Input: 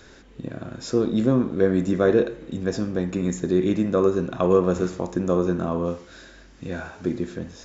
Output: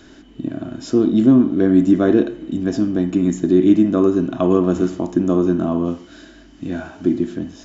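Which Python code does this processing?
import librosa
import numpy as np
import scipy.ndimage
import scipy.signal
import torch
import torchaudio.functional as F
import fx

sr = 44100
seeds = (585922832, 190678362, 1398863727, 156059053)

y = fx.peak_eq(x, sr, hz=560.0, db=-10.5, octaves=0.85)
y = fx.small_body(y, sr, hz=(300.0, 630.0, 3000.0), ring_ms=30, db=15)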